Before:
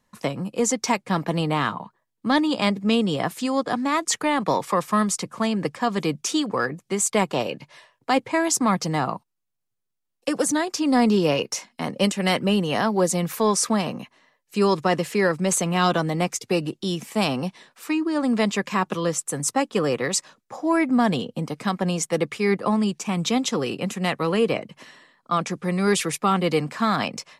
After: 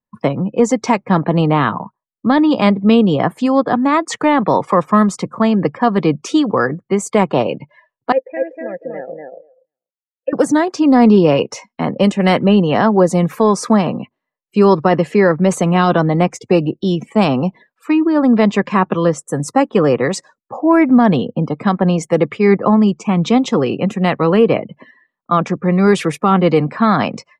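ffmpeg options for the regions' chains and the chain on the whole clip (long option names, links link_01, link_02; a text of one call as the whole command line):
ffmpeg -i in.wav -filter_complex "[0:a]asettb=1/sr,asplit=3[link_01][link_02][link_03];[link_01]atrim=end=8.124[link_04];[link_02]atrim=start=8.12:end=10.33,asetpts=PTS-STARTPTS,afade=type=in:duration=0.004:curve=qsin,afade=type=out:start_time=2.206:duration=0.004:curve=qsin,asplit=3[link_05][link_06][link_07];[link_05]bandpass=frequency=530:width_type=q:width=8,volume=0dB[link_08];[link_06]bandpass=frequency=1840:width_type=q:width=8,volume=-6dB[link_09];[link_07]bandpass=frequency=2480:width_type=q:width=8,volume=-9dB[link_10];[link_08][link_09][link_10]amix=inputs=3:normalize=0,bass=frequency=250:gain=-1,treble=frequency=4000:gain=-12,asplit=2[link_11][link_12];[link_12]adelay=243,lowpass=frequency=3000:poles=1,volume=-3dB,asplit=2[link_13][link_14];[link_14]adelay=243,lowpass=frequency=3000:poles=1,volume=0.22,asplit=2[link_15][link_16];[link_16]adelay=243,lowpass=frequency=3000:poles=1,volume=0.22[link_17];[link_11][link_13][link_15][link_17]amix=inputs=4:normalize=0,atrim=end_sample=97461[link_18];[link_03]atrim=start=10.326[link_19];[link_04][link_18]acrossfade=duration=0.004:curve1=hsin:curve2=qsin[link_20];[link_20][link_19]acrossfade=duration=0.004:curve1=qsin:curve2=hsin,afftdn=noise_reduction=28:noise_floor=-42,lowpass=frequency=1300:poles=1,alimiter=level_in=11.5dB:limit=-1dB:release=50:level=0:latency=1,volume=-1dB" out.wav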